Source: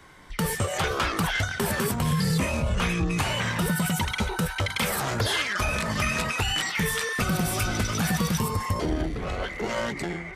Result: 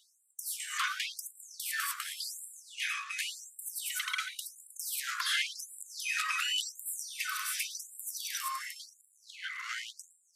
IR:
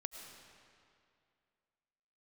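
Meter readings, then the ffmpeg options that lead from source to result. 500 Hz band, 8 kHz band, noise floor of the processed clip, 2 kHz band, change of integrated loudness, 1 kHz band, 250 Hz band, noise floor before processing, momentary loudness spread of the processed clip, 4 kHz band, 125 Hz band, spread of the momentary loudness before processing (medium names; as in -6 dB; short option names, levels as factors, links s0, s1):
under -40 dB, -4.5 dB, -69 dBFS, -8.0 dB, -9.0 dB, -11.5 dB, under -40 dB, -37 dBFS, 13 LU, -5.5 dB, under -40 dB, 4 LU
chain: -filter_complex "[0:a]highpass=f=620:t=q:w=4.9,asplit=2[s0][s1];[1:a]atrim=start_sample=2205,adelay=112[s2];[s1][s2]afir=irnorm=-1:irlink=0,volume=0.188[s3];[s0][s3]amix=inputs=2:normalize=0,afftfilt=real='re*gte(b*sr/1024,990*pow(7400/990,0.5+0.5*sin(2*PI*0.91*pts/sr)))':imag='im*gte(b*sr/1024,990*pow(7400/990,0.5+0.5*sin(2*PI*0.91*pts/sr)))':win_size=1024:overlap=0.75,volume=0.631"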